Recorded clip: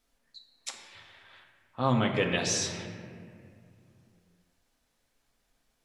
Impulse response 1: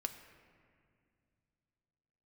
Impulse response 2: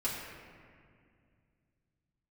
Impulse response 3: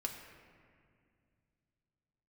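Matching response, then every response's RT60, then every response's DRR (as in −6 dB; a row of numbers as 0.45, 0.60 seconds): 3; 2.3, 2.2, 2.2 seconds; 6.5, −8.0, 1.5 decibels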